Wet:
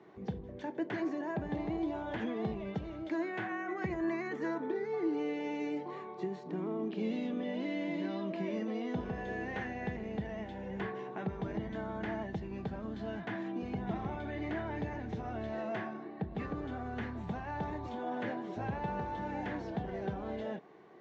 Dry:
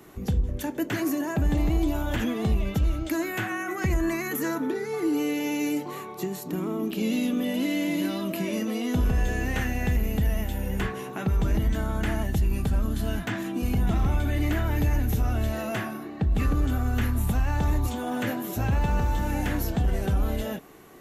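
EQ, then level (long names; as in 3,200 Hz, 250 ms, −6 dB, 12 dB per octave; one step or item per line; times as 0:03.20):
high-frequency loss of the air 210 metres
loudspeaker in its box 220–7,100 Hz, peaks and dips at 270 Hz −9 dB, 540 Hz −3 dB, 1,300 Hz −7 dB, 2,700 Hz −5 dB
high-shelf EQ 2,500 Hz −7.5 dB
−2.5 dB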